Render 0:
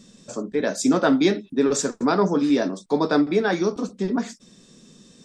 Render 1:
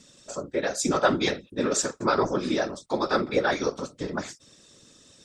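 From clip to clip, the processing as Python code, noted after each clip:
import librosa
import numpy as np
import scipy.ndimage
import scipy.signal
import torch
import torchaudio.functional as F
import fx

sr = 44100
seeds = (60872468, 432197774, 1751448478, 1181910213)

y = fx.low_shelf(x, sr, hz=420.0, db=-12.0)
y = fx.whisperise(y, sr, seeds[0])
y = fx.small_body(y, sr, hz=(560.0, 1300.0), ring_ms=45, db=6)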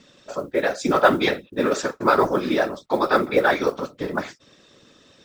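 y = scipy.signal.sosfilt(scipy.signal.butter(2, 3100.0, 'lowpass', fs=sr, output='sos'), x)
y = fx.low_shelf(y, sr, hz=250.0, db=-7.5)
y = fx.mod_noise(y, sr, seeds[1], snr_db=32)
y = y * librosa.db_to_amplitude(7.0)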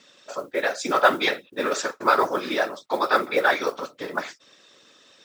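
y = fx.highpass(x, sr, hz=790.0, slope=6)
y = y * librosa.db_to_amplitude(1.5)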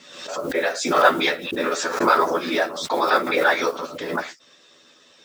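y = fx.doubler(x, sr, ms=12.0, db=-2.0)
y = fx.pre_swell(y, sr, db_per_s=63.0)
y = y * librosa.db_to_amplitude(-1.0)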